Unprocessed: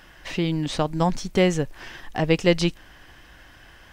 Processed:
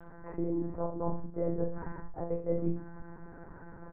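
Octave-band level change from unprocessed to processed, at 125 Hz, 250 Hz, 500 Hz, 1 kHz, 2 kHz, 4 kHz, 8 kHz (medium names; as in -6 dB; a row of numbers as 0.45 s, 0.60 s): -12.5 dB, -11.0 dB, -10.5 dB, -13.0 dB, -23.5 dB, under -40 dB, under -40 dB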